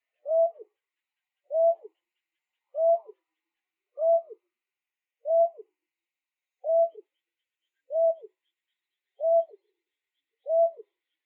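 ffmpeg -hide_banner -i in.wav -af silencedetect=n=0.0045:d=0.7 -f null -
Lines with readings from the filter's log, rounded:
silence_start: 0.62
silence_end: 1.50 | silence_duration: 0.88
silence_start: 1.87
silence_end: 2.74 | silence_duration: 0.88
silence_start: 3.11
silence_end: 3.97 | silence_duration: 0.87
silence_start: 4.33
silence_end: 5.25 | silence_duration: 0.92
silence_start: 5.61
silence_end: 6.64 | silence_duration: 1.02
silence_start: 7.00
silence_end: 7.90 | silence_duration: 0.90
silence_start: 8.26
silence_end: 9.20 | silence_duration: 0.94
silence_start: 9.55
silence_end: 10.46 | silence_duration: 0.91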